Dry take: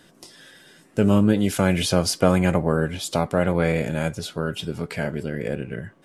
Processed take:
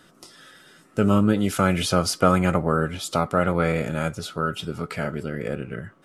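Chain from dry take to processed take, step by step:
parametric band 1,300 Hz +13.5 dB 0.23 octaves
notch filter 1,600 Hz, Q 29
level −1.5 dB

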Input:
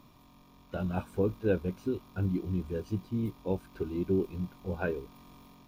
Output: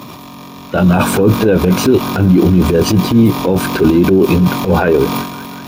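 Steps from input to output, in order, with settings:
high-pass filter 130 Hz 12 dB per octave
transient designer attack −7 dB, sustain +11 dB
on a send: feedback echo with a band-pass in the loop 185 ms, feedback 83%, band-pass 1,800 Hz, level −19 dB
on the sum: boost into a limiter +28 dB
level −1 dB

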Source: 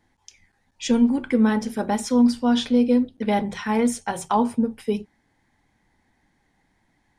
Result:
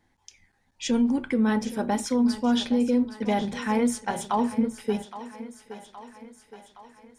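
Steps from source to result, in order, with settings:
brickwall limiter −13.5 dBFS, peak gain reduction 4.5 dB
feedback echo with a high-pass in the loop 818 ms, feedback 61%, high-pass 240 Hz, level −13.5 dB
level −2 dB

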